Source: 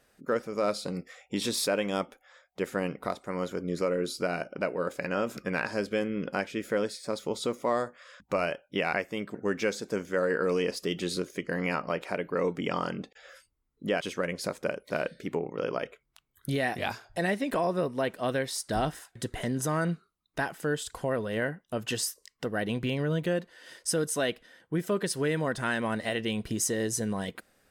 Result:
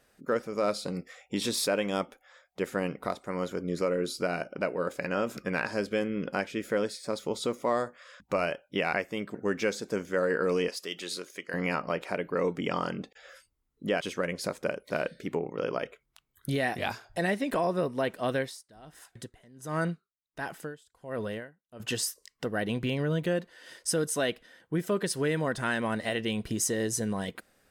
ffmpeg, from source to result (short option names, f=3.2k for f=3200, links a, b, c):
-filter_complex "[0:a]asettb=1/sr,asplit=3[a][b][c];[a]atrim=end=10.684[d];[b]atrim=start=10.68:end=11.54,asetpts=PTS-STARTPTS,afade=t=in:d=0.004:c=qsin,afade=t=out:st=0.856:d=0.004:c=qsin,highpass=f=1k:p=1[e];[c]atrim=start=11.536[f];[d][e]acrossfade=d=0.004:c1=hsin:c2=qsin[g];[g][f]acrossfade=d=0.004:c1=qsin:c2=hsin,asettb=1/sr,asplit=3[h][i][j];[h]atrim=end=18.394[k];[i]atrim=start=18.39:end=21.8,asetpts=PTS-STARTPTS,afade=t=in:d=0.004:c=qsin,afade=t=out:st=3.406:d=0.004:c=qsin,aeval=exprs='val(0)*pow(10,-26*(0.5-0.5*cos(2*PI*1.4*n/s))/20)':c=same[l];[j]atrim=start=21.796[m];[k][l]acrossfade=d=0.004:c1=hsin:c2=qsin[n];[n][m]acrossfade=d=0.004:c1=qsin:c2=hsin"